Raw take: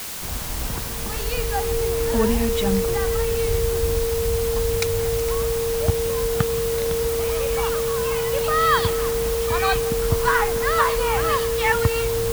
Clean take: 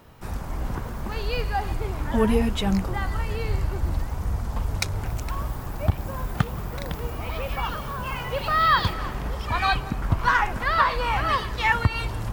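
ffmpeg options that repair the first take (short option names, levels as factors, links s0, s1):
-af "adeclick=t=4,bandreject=f=460:w=30,afwtdn=0.025"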